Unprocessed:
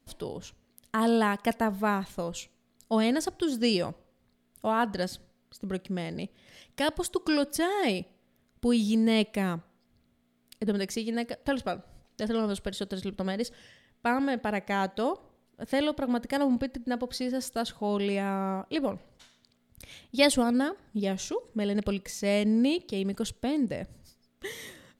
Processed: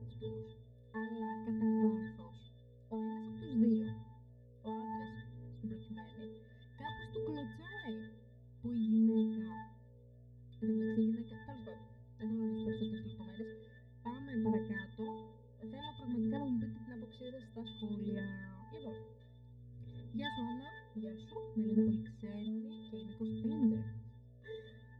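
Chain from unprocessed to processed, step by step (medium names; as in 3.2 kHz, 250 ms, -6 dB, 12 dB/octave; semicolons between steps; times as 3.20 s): mains buzz 60 Hz, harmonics 11, -43 dBFS -4 dB/octave; pitch-class resonator A, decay 0.65 s; compression 10:1, threshold -42 dBFS, peak gain reduction 15.5 dB; phaser 0.55 Hz, delay 2 ms, feedback 67%; trim +6.5 dB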